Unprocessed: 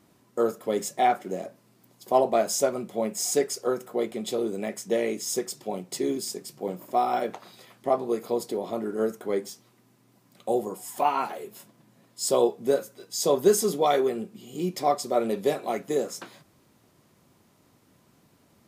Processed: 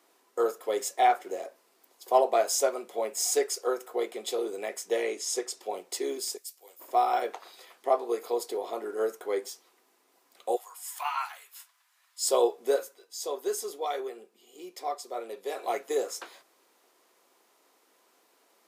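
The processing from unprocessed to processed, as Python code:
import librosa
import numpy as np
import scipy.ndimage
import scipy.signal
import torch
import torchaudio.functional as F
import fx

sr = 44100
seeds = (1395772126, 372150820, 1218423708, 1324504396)

y = fx.lowpass(x, sr, hz=9800.0, slope=12, at=(5.03, 5.6))
y = fx.pre_emphasis(y, sr, coefficient=0.97, at=(6.36, 6.79), fade=0.02)
y = fx.highpass(y, sr, hz=1100.0, slope=24, at=(10.55, 12.24), fade=0.02)
y = fx.edit(y, sr, fx.fade_down_up(start_s=12.88, length_s=2.73, db=-8.5, fade_s=0.13), tone=tone)
y = scipy.signal.sosfilt(scipy.signal.butter(4, 400.0, 'highpass', fs=sr, output='sos'), y)
y = fx.notch(y, sr, hz=590.0, q=12.0)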